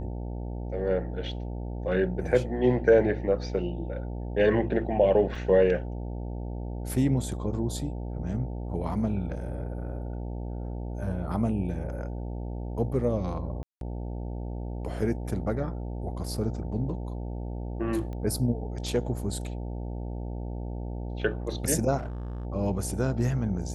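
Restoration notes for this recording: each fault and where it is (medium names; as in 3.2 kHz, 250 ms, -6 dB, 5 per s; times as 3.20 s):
buzz 60 Hz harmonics 15 -34 dBFS
5.35 s: dropout 3.3 ms
13.63–13.81 s: dropout 182 ms
18.13 s: pop -28 dBFS
21.97–22.45 s: clipped -31.5 dBFS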